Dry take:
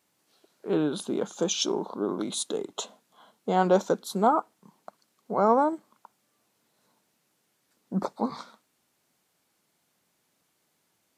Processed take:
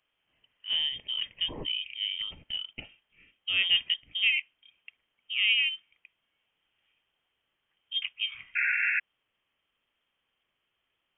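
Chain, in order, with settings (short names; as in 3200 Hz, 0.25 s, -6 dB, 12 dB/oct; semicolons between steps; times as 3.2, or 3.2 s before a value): painted sound noise, 8.55–9, 650–2000 Hz -23 dBFS; inverted band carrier 3400 Hz; gain -4 dB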